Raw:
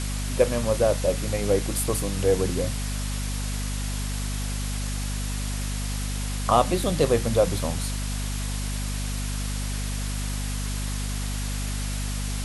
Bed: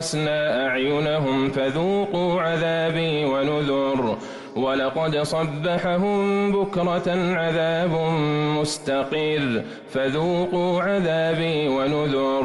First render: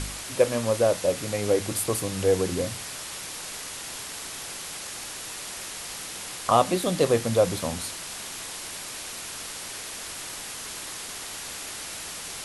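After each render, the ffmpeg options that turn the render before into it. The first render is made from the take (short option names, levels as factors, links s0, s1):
-af "bandreject=f=50:t=h:w=4,bandreject=f=100:t=h:w=4,bandreject=f=150:t=h:w=4,bandreject=f=200:t=h:w=4,bandreject=f=250:t=h:w=4"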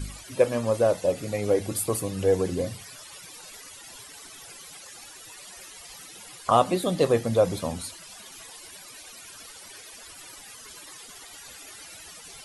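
-af "afftdn=nr=16:nf=-37"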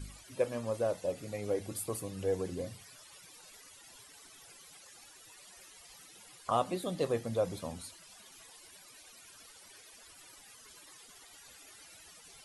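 -af "volume=0.299"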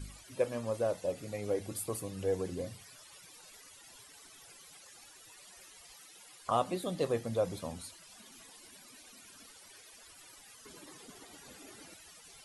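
-filter_complex "[0:a]asettb=1/sr,asplit=3[s0][s1][s2];[s0]atrim=end=5.934[s3];[s1]atrim=start=5.93:end=6.41,asetpts=PTS-STARTPTS,afade=t=in:d=0.004:c=qsin,afade=t=out:st=0.476:d=0.004:c=qsin,lowshelf=f=240:g=-10.5[s4];[s2]atrim=start=6.406[s5];[s3][s4]acrossfade=d=0.004:c1=hsin:c2=qsin[s6];[s6][s5]acrossfade=d=0.004:c1=qsin:c2=hsin,asettb=1/sr,asplit=3[s7][s8][s9];[s7]atrim=end=8.144[s10];[s8]atrim=start=8.14:end=9.54,asetpts=PTS-STARTPTS,afade=t=in:d=0.004:c=qsin,afade=t=out:st=1.396:d=0.004:c=qsin,equalizer=f=240:t=o:w=0.61:g=12.5[s11];[s9]atrim=start=9.536[s12];[s10][s11]acrossfade=d=0.004:c1=hsin:c2=qsin[s13];[s13][s12]acrossfade=d=0.004:c1=qsin:c2=hsin,asettb=1/sr,asplit=3[s14][s15][s16];[s14]atrim=end=10.654[s17];[s15]atrim=start=10.65:end=11.94,asetpts=PTS-STARTPTS,afade=t=in:d=0.004:c=qsin,afade=t=out:st=1.286:d=0.004:c=qsin,equalizer=f=250:w=0.48:g=15[s18];[s16]atrim=start=11.936[s19];[s17][s18]acrossfade=d=0.004:c1=hsin:c2=qsin[s20];[s20][s19]acrossfade=d=0.004:c1=qsin:c2=hsin"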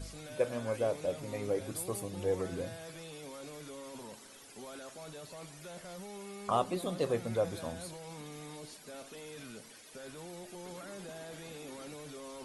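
-filter_complex "[1:a]volume=0.0531[s0];[0:a][s0]amix=inputs=2:normalize=0"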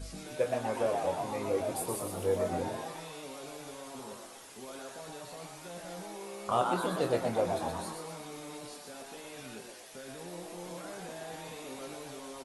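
-filter_complex "[0:a]asplit=2[s0][s1];[s1]adelay=23,volume=0.473[s2];[s0][s2]amix=inputs=2:normalize=0,asplit=2[s3][s4];[s4]asplit=7[s5][s6][s7][s8][s9][s10][s11];[s5]adelay=121,afreqshift=140,volume=0.596[s12];[s6]adelay=242,afreqshift=280,volume=0.316[s13];[s7]adelay=363,afreqshift=420,volume=0.168[s14];[s8]adelay=484,afreqshift=560,volume=0.0891[s15];[s9]adelay=605,afreqshift=700,volume=0.0468[s16];[s10]adelay=726,afreqshift=840,volume=0.0248[s17];[s11]adelay=847,afreqshift=980,volume=0.0132[s18];[s12][s13][s14][s15][s16][s17][s18]amix=inputs=7:normalize=0[s19];[s3][s19]amix=inputs=2:normalize=0"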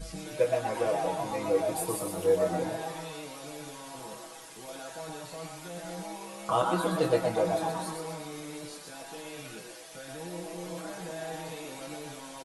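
-af "aecho=1:1:6.2:0.98"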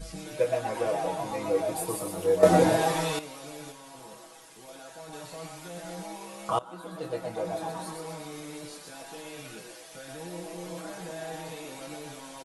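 -filter_complex "[0:a]asplit=6[s0][s1][s2][s3][s4][s5];[s0]atrim=end=2.432[s6];[s1]atrim=start=2.428:end=3.192,asetpts=PTS-STARTPTS,volume=3.55[s7];[s2]atrim=start=3.188:end=3.722[s8];[s3]atrim=start=3.718:end=5.132,asetpts=PTS-STARTPTS,volume=0.631[s9];[s4]atrim=start=5.128:end=6.59,asetpts=PTS-STARTPTS,afade=t=out:st=1.458:d=0.004:c=hsin:silence=0.0891251[s10];[s5]atrim=start=6.59,asetpts=PTS-STARTPTS,afade=t=in:d=1.67:silence=0.0891251[s11];[s6][s7]acrossfade=d=0.004:c1=hsin:c2=hsin[s12];[s12][s8]acrossfade=d=0.004:c1=hsin:c2=hsin[s13];[s13][s9]acrossfade=d=0.004:c1=hsin:c2=hsin[s14];[s10][s11]concat=n=2:v=0:a=1[s15];[s14][s15]acrossfade=d=0.004:c1=hsin:c2=hsin"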